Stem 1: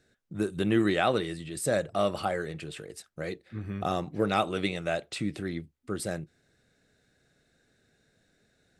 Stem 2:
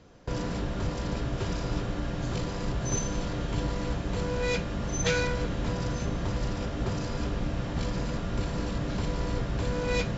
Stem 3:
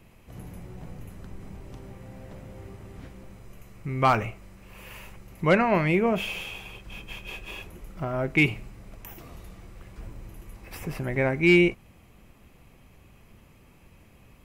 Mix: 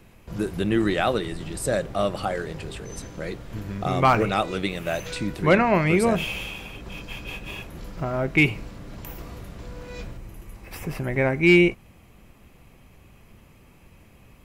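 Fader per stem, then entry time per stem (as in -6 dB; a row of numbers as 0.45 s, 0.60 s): +2.5 dB, -11.0 dB, +2.5 dB; 0.00 s, 0.00 s, 0.00 s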